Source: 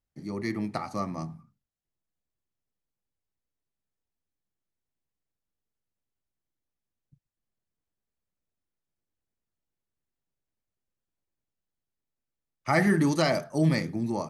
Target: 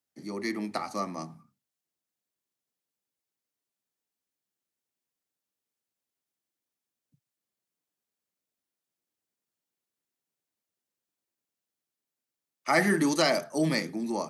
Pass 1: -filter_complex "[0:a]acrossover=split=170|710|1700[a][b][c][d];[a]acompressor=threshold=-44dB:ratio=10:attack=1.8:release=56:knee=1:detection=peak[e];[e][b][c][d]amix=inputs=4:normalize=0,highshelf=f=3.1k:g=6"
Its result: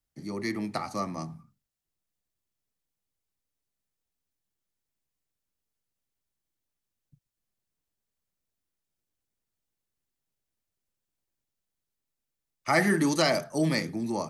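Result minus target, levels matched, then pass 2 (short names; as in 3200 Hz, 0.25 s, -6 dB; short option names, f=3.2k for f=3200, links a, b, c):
125 Hz band +3.0 dB
-filter_complex "[0:a]acrossover=split=170|710|1700[a][b][c][d];[a]acompressor=threshold=-44dB:ratio=10:attack=1.8:release=56:knee=1:detection=peak,highpass=f=120:w=0.5412,highpass=f=120:w=1.3066[e];[e][b][c][d]amix=inputs=4:normalize=0,highshelf=f=3.1k:g=6"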